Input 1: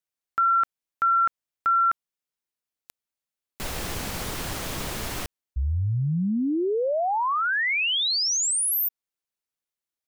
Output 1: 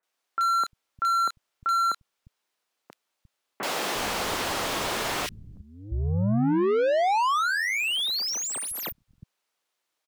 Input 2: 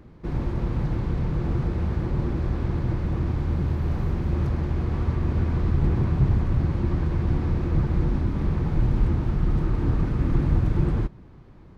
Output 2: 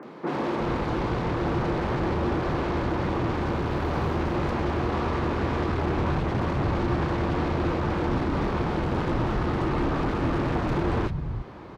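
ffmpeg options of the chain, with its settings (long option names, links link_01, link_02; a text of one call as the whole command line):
ffmpeg -i in.wav -filter_complex "[0:a]asplit=2[link_01][link_02];[link_02]highpass=frequency=720:poles=1,volume=32dB,asoftclip=type=tanh:threshold=-8.5dB[link_03];[link_01][link_03]amix=inputs=2:normalize=0,lowpass=frequency=2400:poles=1,volume=-6dB,acrossover=split=160|1900[link_04][link_05][link_06];[link_06]adelay=30[link_07];[link_04]adelay=350[link_08];[link_08][link_05][link_07]amix=inputs=3:normalize=0,volume=-7.5dB" out.wav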